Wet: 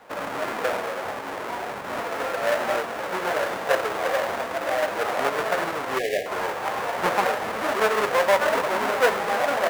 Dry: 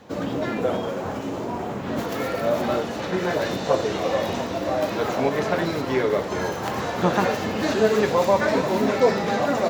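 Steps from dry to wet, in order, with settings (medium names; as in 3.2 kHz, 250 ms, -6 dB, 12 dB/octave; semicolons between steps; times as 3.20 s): square wave that keeps the level; three-band isolator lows -20 dB, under 530 Hz, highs -12 dB, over 2.2 kHz; spectral selection erased 5.99–6.26 s, 780–1600 Hz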